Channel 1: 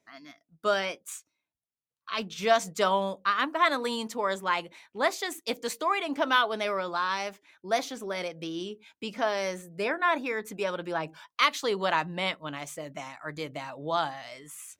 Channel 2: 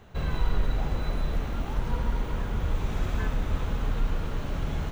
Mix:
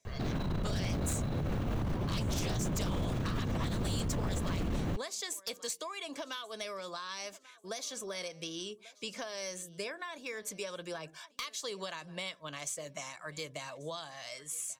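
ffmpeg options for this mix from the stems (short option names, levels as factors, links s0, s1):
-filter_complex "[0:a]equalizer=f=7200:t=o:w=1.8:g=13.5,acompressor=threshold=0.0316:ratio=5,volume=0.562,asplit=2[s0][s1];[s1]volume=0.0668[s2];[1:a]lowshelf=f=480:g=9,alimiter=limit=0.0631:level=0:latency=1:release=40,adelay=50,volume=1.41[s3];[s2]aecho=0:1:1138|2276|3414|4552:1|0.27|0.0729|0.0197[s4];[s0][s3][s4]amix=inputs=3:normalize=0,aecho=1:1:1.8:0.4,acrossover=split=360|3000[s5][s6][s7];[s6]acompressor=threshold=0.01:ratio=6[s8];[s5][s8][s7]amix=inputs=3:normalize=0,aeval=exprs='0.0447*(abs(mod(val(0)/0.0447+3,4)-2)-1)':c=same"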